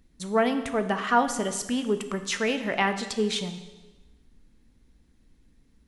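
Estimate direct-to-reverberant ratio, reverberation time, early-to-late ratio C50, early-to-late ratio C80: 8.0 dB, 1.2 s, 10.5 dB, 12.0 dB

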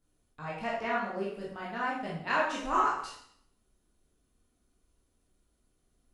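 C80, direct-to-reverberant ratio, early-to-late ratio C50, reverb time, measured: 6.5 dB, −6.5 dB, 2.0 dB, 0.65 s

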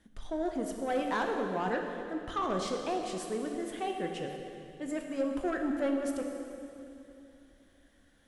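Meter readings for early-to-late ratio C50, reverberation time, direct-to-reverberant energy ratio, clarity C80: 3.5 dB, 2.8 s, 2.5 dB, 4.5 dB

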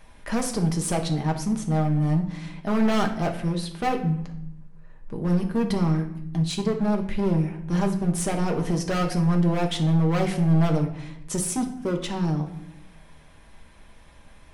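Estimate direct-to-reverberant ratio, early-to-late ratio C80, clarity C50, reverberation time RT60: 2.0 dB, 13.0 dB, 9.5 dB, 0.80 s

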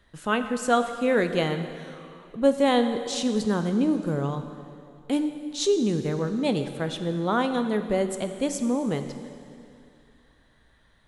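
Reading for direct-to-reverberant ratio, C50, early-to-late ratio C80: 7.5 dB, 9.0 dB, 9.5 dB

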